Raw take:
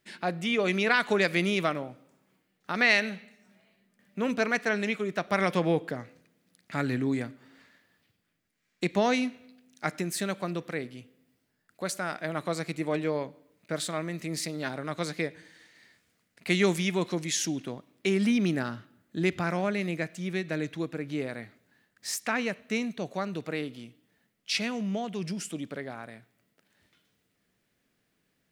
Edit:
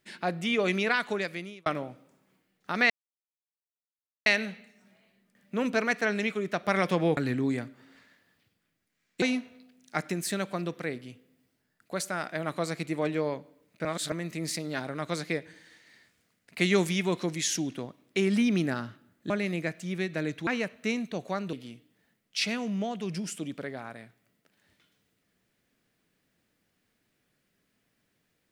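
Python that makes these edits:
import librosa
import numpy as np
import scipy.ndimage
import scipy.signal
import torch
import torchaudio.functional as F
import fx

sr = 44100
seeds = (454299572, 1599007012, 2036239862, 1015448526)

y = fx.edit(x, sr, fx.fade_out_span(start_s=0.68, length_s=0.98),
    fx.insert_silence(at_s=2.9, length_s=1.36),
    fx.cut(start_s=5.81, length_s=0.99),
    fx.cut(start_s=8.85, length_s=0.26),
    fx.reverse_span(start_s=13.74, length_s=0.27),
    fx.cut(start_s=19.19, length_s=0.46),
    fx.cut(start_s=20.82, length_s=1.51),
    fx.cut(start_s=23.39, length_s=0.27), tone=tone)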